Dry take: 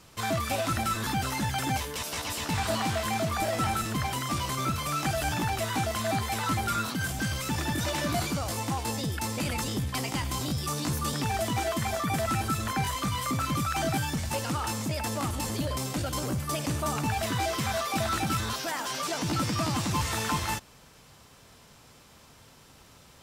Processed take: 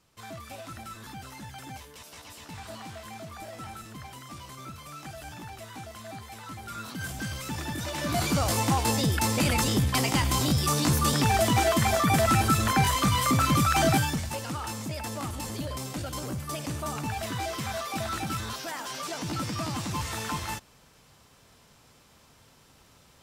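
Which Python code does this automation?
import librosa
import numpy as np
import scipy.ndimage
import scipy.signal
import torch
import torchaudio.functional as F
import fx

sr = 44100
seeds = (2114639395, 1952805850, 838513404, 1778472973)

y = fx.gain(x, sr, db=fx.line((6.58, -13.0), (7.05, -4.0), (7.91, -4.0), (8.4, 6.0), (13.93, 6.0), (14.36, -3.5)))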